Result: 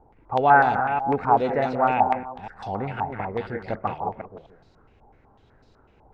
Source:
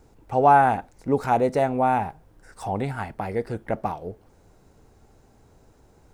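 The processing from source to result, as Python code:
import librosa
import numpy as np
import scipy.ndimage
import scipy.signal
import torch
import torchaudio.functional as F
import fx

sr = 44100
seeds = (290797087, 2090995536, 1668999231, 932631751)

y = fx.reverse_delay(x, sr, ms=248, wet_db=-7.0)
y = y + 10.0 ** (-10.5 / 20.0) * np.pad(y, (int(168 * sr / 1000.0), 0))[:len(y)]
y = fx.filter_held_lowpass(y, sr, hz=8.0, low_hz=850.0, high_hz=4300.0)
y = y * librosa.db_to_amplitude(-3.5)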